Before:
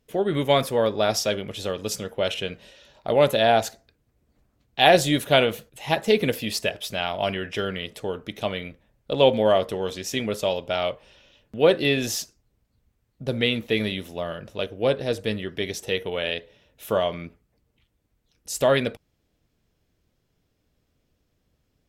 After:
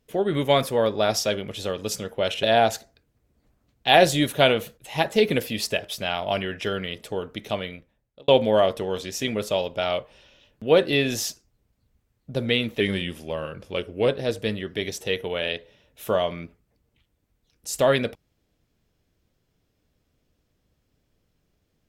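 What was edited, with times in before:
0:02.43–0:03.35: remove
0:08.42–0:09.20: fade out
0:13.72–0:14.90: play speed 92%

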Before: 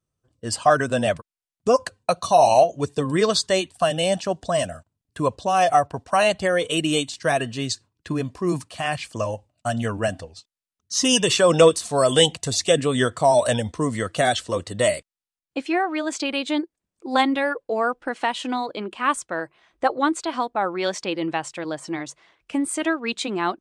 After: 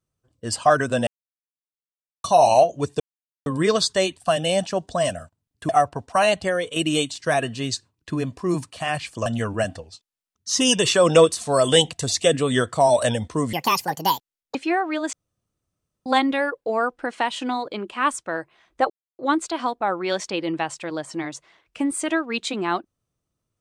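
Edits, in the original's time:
0:01.07–0:02.24: silence
0:03.00: splice in silence 0.46 s
0:05.23–0:05.67: remove
0:06.38–0:06.74: fade out, to −8 dB
0:09.24–0:09.70: remove
0:13.97–0:15.58: play speed 158%
0:16.16–0:17.09: fill with room tone
0:19.93: splice in silence 0.29 s

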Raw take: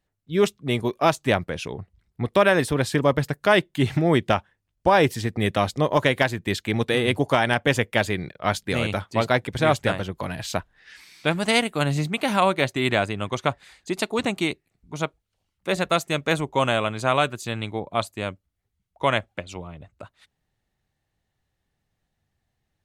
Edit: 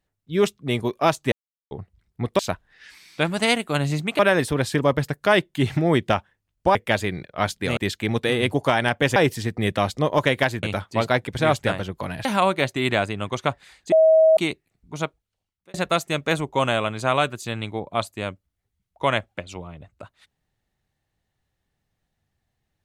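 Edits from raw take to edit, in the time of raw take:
0:01.32–0:01.71: silence
0:04.95–0:06.42: swap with 0:07.81–0:08.83
0:10.45–0:12.25: move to 0:02.39
0:13.92–0:14.37: beep over 639 Hz −11 dBFS
0:15.03–0:15.74: fade out

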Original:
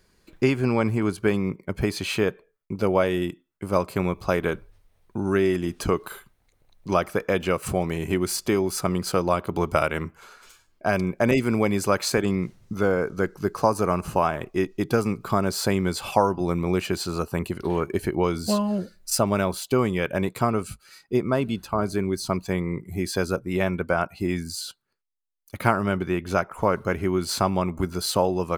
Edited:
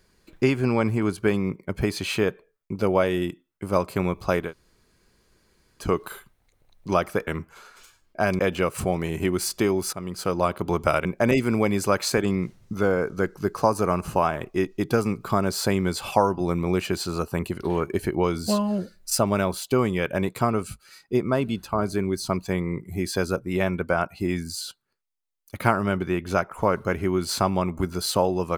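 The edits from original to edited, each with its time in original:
0:04.46–0:05.83: fill with room tone, crossfade 0.16 s
0:08.81–0:09.34: fade in, from −13 dB
0:09.93–0:11.05: move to 0:07.27

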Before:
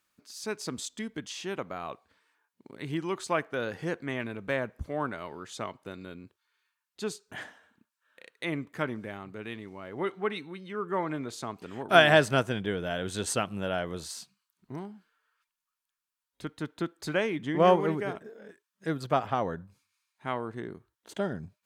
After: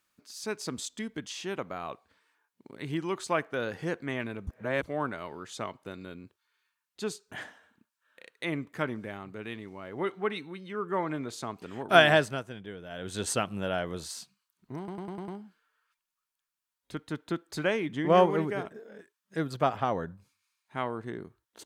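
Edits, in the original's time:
0:04.47–0:04.83: reverse
0:12.05–0:13.24: duck −11 dB, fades 0.35 s
0:14.78: stutter 0.10 s, 6 plays

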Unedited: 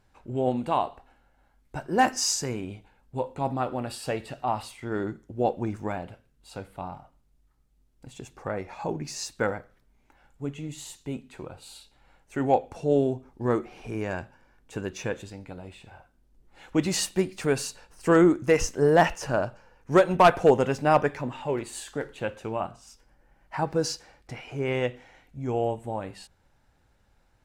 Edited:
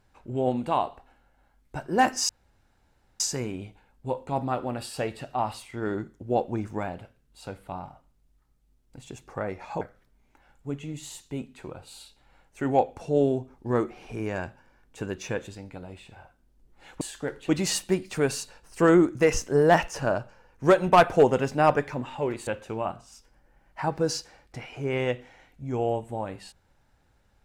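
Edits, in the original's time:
0:02.29: splice in room tone 0.91 s
0:08.90–0:09.56: remove
0:21.74–0:22.22: move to 0:16.76

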